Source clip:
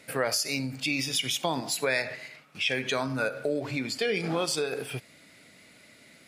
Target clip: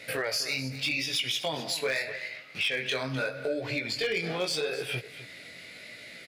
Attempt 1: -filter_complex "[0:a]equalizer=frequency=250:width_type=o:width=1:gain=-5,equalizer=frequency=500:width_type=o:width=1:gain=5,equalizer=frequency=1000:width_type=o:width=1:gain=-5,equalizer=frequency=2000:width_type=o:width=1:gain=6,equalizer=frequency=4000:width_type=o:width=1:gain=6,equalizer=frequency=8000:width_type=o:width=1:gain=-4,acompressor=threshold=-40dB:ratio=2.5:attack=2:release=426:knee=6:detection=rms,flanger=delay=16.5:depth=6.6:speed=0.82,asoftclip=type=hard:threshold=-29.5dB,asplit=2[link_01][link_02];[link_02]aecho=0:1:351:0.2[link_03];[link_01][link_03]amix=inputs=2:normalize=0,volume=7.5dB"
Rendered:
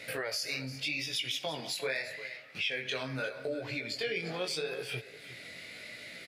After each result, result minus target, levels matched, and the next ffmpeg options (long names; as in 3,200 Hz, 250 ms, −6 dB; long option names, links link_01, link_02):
echo 98 ms late; downward compressor: peak gain reduction +5 dB
-filter_complex "[0:a]equalizer=frequency=250:width_type=o:width=1:gain=-5,equalizer=frequency=500:width_type=o:width=1:gain=5,equalizer=frequency=1000:width_type=o:width=1:gain=-5,equalizer=frequency=2000:width_type=o:width=1:gain=6,equalizer=frequency=4000:width_type=o:width=1:gain=6,equalizer=frequency=8000:width_type=o:width=1:gain=-4,acompressor=threshold=-40dB:ratio=2.5:attack=2:release=426:knee=6:detection=rms,flanger=delay=16.5:depth=6.6:speed=0.82,asoftclip=type=hard:threshold=-29.5dB,asplit=2[link_01][link_02];[link_02]aecho=0:1:253:0.2[link_03];[link_01][link_03]amix=inputs=2:normalize=0,volume=7.5dB"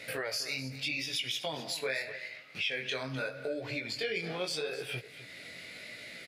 downward compressor: peak gain reduction +5 dB
-filter_complex "[0:a]equalizer=frequency=250:width_type=o:width=1:gain=-5,equalizer=frequency=500:width_type=o:width=1:gain=5,equalizer=frequency=1000:width_type=o:width=1:gain=-5,equalizer=frequency=2000:width_type=o:width=1:gain=6,equalizer=frequency=4000:width_type=o:width=1:gain=6,equalizer=frequency=8000:width_type=o:width=1:gain=-4,acompressor=threshold=-31.5dB:ratio=2.5:attack=2:release=426:knee=6:detection=rms,flanger=delay=16.5:depth=6.6:speed=0.82,asoftclip=type=hard:threshold=-29.5dB,asplit=2[link_01][link_02];[link_02]aecho=0:1:253:0.2[link_03];[link_01][link_03]amix=inputs=2:normalize=0,volume=7.5dB"